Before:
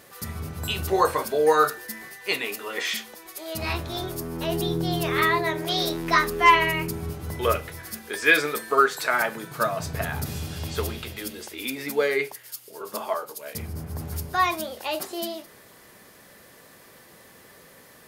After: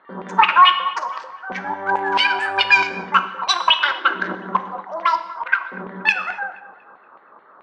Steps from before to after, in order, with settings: local Wiener filter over 41 samples; level-controlled noise filter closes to 880 Hz, open at -21 dBFS; tone controls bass +6 dB, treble +13 dB; wide varispeed 2.37×; LFO band-pass saw down 4.6 Hz 1–2.5 kHz; distance through air 150 m; on a send: feedback echo behind a low-pass 238 ms, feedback 40%, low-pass 1.4 kHz, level -15 dB; on the sum: gated-style reverb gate 300 ms falling, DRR 9.5 dB; loudness maximiser +17 dB; trim -1 dB

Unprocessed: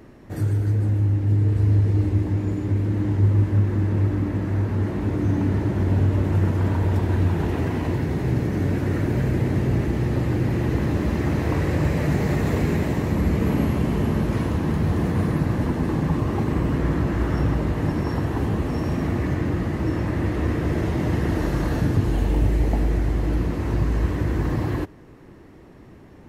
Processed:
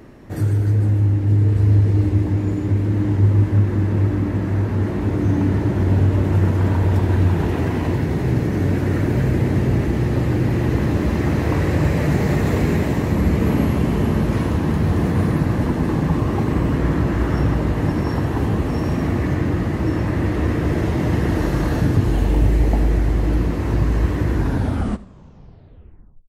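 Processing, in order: tape stop on the ending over 1.99 s; delay 76 ms -18.5 dB; trim +3.5 dB

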